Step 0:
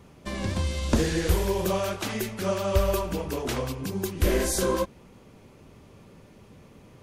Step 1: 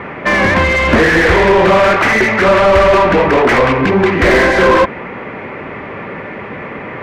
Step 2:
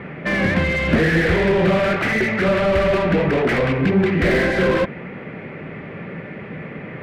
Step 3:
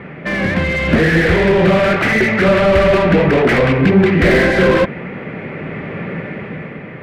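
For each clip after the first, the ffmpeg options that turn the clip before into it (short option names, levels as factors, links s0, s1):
-filter_complex "[0:a]lowpass=f=2000:t=q:w=3.6,acontrast=51,asplit=2[s0][s1];[s1]highpass=f=720:p=1,volume=28.2,asoftclip=type=tanh:threshold=0.631[s2];[s0][s2]amix=inputs=2:normalize=0,lowpass=f=1300:p=1,volume=0.501,volume=1.5"
-af "equalizer=f=160:t=o:w=0.67:g=10,equalizer=f=1000:t=o:w=0.67:g=-9,equalizer=f=6300:t=o:w=0.67:g=-5,volume=0.422"
-af "dynaudnorm=f=170:g=9:m=2.24,volume=1.12"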